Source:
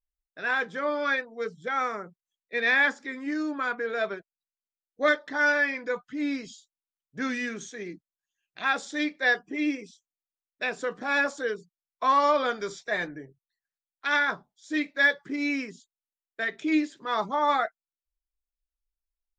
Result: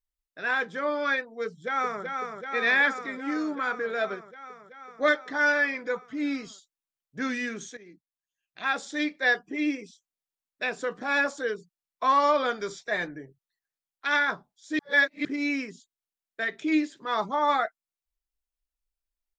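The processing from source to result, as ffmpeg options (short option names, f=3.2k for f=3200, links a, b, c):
-filter_complex "[0:a]asplit=2[a][b];[b]afade=t=in:st=1.45:d=0.01,afade=t=out:st=2.03:d=0.01,aecho=0:1:380|760|1140|1520|1900|2280|2660|3040|3420|3800|4180|4560:0.562341|0.449873|0.359898|0.287919|0.230335|0.184268|0.147414|0.117932|0.0943452|0.0754762|0.0603809|0.0483048[c];[a][c]amix=inputs=2:normalize=0,asplit=4[d][e][f][g];[d]atrim=end=7.77,asetpts=PTS-STARTPTS,afade=t=out:st=7.766:d=0.004:c=hsin:silence=0.16788[h];[e]atrim=start=7.77:end=14.792,asetpts=PTS-STARTPTS,afade=t=in:d=1.17:silence=0.16788[i];[f]atrim=start=14.788:end=15.252,asetpts=PTS-STARTPTS,areverse[j];[g]atrim=start=15.248[k];[h][i]concat=n=2:v=0:a=1[l];[l][j]acrossfade=d=0.004:c1=hsin:c2=hsin[m];[m][k]acrossfade=d=0.004:c1=hsin:c2=hsin"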